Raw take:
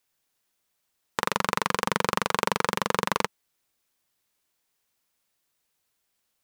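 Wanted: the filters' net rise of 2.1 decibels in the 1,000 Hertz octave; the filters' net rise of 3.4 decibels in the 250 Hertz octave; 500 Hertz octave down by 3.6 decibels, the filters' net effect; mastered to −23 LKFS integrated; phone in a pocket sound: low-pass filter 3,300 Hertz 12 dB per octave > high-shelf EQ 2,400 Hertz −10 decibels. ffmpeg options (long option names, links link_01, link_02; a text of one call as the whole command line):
ffmpeg -i in.wav -af "lowpass=3300,equalizer=frequency=250:width_type=o:gain=6,equalizer=frequency=500:width_type=o:gain=-6.5,equalizer=frequency=1000:width_type=o:gain=5.5,highshelf=frequency=2400:gain=-10,volume=4dB" out.wav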